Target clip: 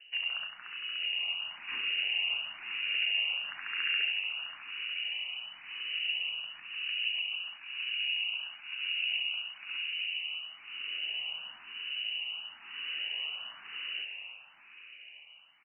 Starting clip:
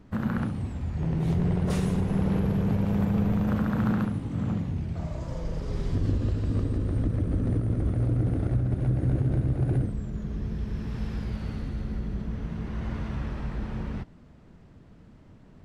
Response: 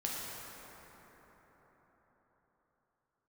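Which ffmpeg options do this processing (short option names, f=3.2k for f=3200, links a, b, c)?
-filter_complex "[0:a]acrossover=split=220[a][b];[a]asoftclip=type=tanh:threshold=-32.5dB[c];[c][b]amix=inputs=2:normalize=0,asplit=9[d][e][f][g][h][i][j][k][l];[e]adelay=295,afreqshift=100,volume=-8dB[m];[f]adelay=590,afreqshift=200,volume=-12dB[n];[g]adelay=885,afreqshift=300,volume=-16dB[o];[h]adelay=1180,afreqshift=400,volume=-20dB[p];[i]adelay=1475,afreqshift=500,volume=-24.1dB[q];[j]adelay=1770,afreqshift=600,volume=-28.1dB[r];[k]adelay=2065,afreqshift=700,volume=-32.1dB[s];[l]adelay=2360,afreqshift=800,volume=-36.1dB[t];[d][m][n][o][p][q][r][s][t]amix=inputs=9:normalize=0,lowpass=f=2.6k:t=q:w=0.5098,lowpass=f=2.6k:t=q:w=0.6013,lowpass=f=2.6k:t=q:w=0.9,lowpass=f=2.6k:t=q:w=2.563,afreqshift=-3000,asplit=2[u][v];[v]afreqshift=1[w];[u][w]amix=inputs=2:normalize=1,volume=-2.5dB"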